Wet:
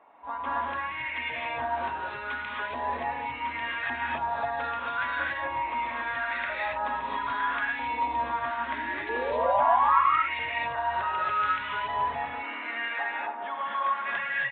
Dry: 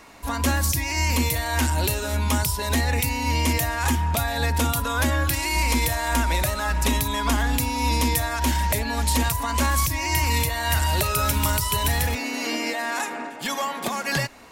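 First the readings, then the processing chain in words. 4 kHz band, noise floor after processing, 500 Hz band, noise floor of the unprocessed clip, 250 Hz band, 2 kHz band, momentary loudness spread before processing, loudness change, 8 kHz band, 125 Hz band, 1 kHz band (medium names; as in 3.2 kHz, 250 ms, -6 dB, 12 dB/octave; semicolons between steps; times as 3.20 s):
-13.5 dB, -37 dBFS, -3.5 dB, -33 dBFS, -17.5 dB, -2.5 dB, 5 LU, -5.5 dB, under -40 dB, under -25 dB, +0.5 dB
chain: painted sound rise, 8.59–10.00 s, 230–1400 Hz -22 dBFS; LFO band-pass saw up 0.77 Hz 750–2100 Hz; gated-style reverb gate 300 ms rising, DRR -4 dB; resampled via 8 kHz; trim -3 dB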